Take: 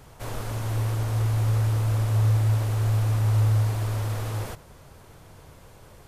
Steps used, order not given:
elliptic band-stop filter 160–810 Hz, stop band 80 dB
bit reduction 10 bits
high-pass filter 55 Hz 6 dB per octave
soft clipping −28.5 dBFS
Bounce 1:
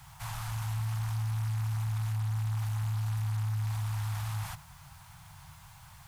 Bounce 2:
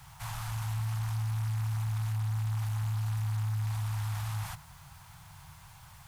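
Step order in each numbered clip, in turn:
high-pass filter, then soft clipping, then bit reduction, then elliptic band-stop filter
high-pass filter, then soft clipping, then elliptic band-stop filter, then bit reduction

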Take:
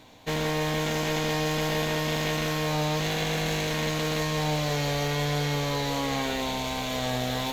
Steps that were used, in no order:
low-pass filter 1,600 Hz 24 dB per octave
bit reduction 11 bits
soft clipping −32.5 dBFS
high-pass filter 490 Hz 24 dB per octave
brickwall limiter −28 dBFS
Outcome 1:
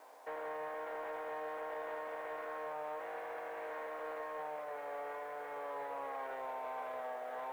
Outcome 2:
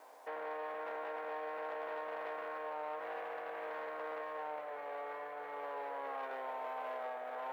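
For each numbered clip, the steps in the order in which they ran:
brickwall limiter, then low-pass filter, then bit reduction, then high-pass filter, then soft clipping
low-pass filter, then bit reduction, then brickwall limiter, then soft clipping, then high-pass filter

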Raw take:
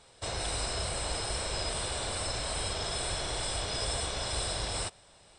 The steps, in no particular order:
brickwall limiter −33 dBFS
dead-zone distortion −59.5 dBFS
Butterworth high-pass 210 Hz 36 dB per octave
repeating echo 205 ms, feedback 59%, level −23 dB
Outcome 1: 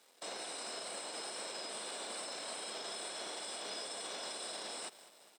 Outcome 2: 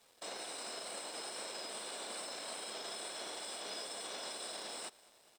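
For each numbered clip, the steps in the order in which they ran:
repeating echo, then dead-zone distortion, then brickwall limiter, then Butterworth high-pass
brickwall limiter, then Butterworth high-pass, then dead-zone distortion, then repeating echo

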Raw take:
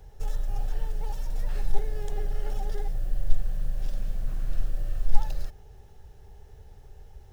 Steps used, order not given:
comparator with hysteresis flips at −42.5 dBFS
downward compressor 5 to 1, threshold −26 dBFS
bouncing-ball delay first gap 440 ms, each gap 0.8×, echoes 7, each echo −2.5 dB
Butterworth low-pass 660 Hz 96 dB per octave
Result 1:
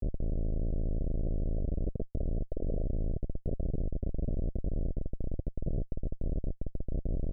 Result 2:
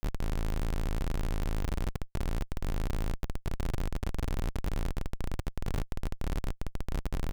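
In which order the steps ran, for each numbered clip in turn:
downward compressor, then bouncing-ball delay, then comparator with hysteresis, then Butterworth low-pass
Butterworth low-pass, then downward compressor, then bouncing-ball delay, then comparator with hysteresis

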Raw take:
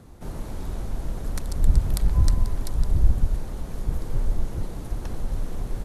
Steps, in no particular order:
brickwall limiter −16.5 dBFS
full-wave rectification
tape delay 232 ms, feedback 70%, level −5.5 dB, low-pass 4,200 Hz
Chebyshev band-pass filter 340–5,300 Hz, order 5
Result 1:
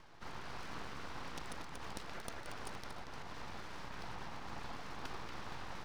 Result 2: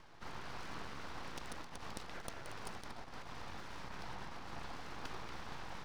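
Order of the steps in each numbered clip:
brickwall limiter, then Chebyshev band-pass filter, then tape delay, then full-wave rectification
tape delay, then brickwall limiter, then Chebyshev band-pass filter, then full-wave rectification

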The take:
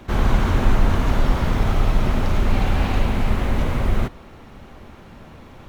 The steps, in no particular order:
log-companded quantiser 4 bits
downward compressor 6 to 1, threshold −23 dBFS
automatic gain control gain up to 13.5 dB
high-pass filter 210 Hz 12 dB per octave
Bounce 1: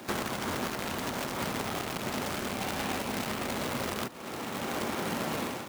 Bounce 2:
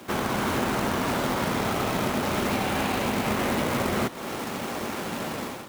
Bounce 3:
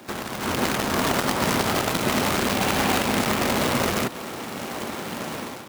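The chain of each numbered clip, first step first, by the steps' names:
automatic gain control, then log-companded quantiser, then downward compressor, then high-pass filter
high-pass filter, then log-companded quantiser, then automatic gain control, then downward compressor
log-companded quantiser, then downward compressor, then automatic gain control, then high-pass filter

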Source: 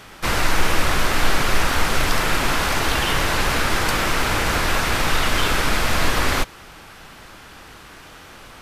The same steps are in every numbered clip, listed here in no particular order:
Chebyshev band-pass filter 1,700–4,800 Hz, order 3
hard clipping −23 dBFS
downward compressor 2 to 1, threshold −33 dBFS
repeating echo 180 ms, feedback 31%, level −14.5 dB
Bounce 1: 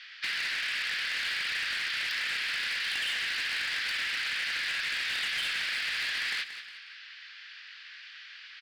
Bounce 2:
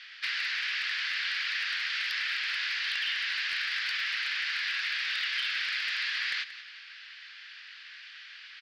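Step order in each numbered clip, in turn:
Chebyshev band-pass filter, then hard clipping, then repeating echo, then downward compressor
Chebyshev band-pass filter, then downward compressor, then hard clipping, then repeating echo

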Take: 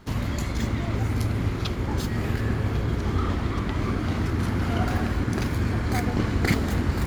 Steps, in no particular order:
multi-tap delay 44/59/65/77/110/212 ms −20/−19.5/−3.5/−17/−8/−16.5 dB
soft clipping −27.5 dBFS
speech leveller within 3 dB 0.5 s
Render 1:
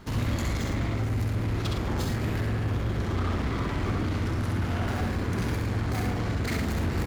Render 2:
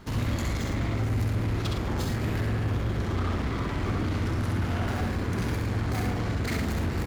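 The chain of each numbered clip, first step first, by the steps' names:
soft clipping, then multi-tap delay, then speech leveller
soft clipping, then speech leveller, then multi-tap delay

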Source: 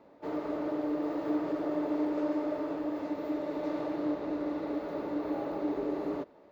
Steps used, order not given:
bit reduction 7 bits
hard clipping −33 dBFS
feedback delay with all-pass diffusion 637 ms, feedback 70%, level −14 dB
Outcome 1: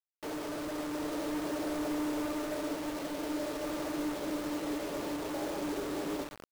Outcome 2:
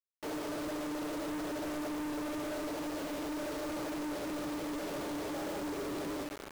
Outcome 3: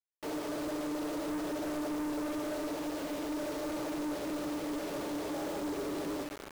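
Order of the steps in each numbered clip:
hard clipping, then feedback delay with all-pass diffusion, then bit reduction
feedback delay with all-pass diffusion, then hard clipping, then bit reduction
feedback delay with all-pass diffusion, then bit reduction, then hard clipping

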